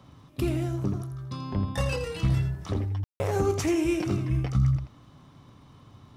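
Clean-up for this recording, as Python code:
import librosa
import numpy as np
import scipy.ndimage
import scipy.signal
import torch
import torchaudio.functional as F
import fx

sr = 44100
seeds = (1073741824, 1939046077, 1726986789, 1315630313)

y = fx.fix_declick_ar(x, sr, threshold=6.5)
y = fx.fix_ambience(y, sr, seeds[0], print_start_s=4.87, print_end_s=5.37, start_s=3.04, end_s=3.2)
y = fx.fix_echo_inverse(y, sr, delay_ms=83, level_db=-9.5)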